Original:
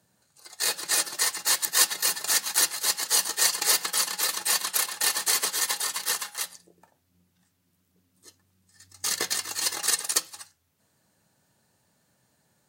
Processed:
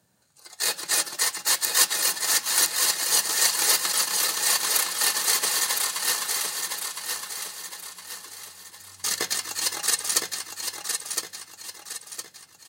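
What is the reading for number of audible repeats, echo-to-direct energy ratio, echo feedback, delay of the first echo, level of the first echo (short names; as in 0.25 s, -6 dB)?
4, -4.0 dB, 42%, 1.012 s, -5.0 dB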